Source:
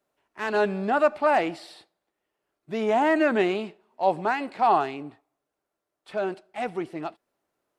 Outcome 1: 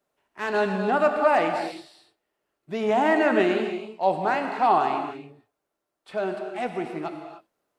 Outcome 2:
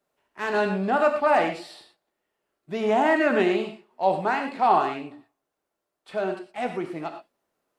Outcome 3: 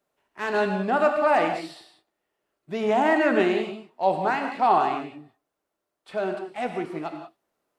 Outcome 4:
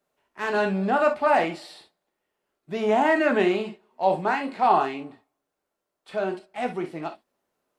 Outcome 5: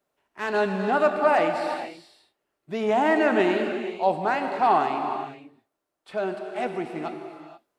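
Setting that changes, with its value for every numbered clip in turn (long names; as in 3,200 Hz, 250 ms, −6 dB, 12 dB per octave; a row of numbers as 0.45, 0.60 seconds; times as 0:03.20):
reverb whose tail is shaped and stops, gate: 330, 140, 210, 80, 510 milliseconds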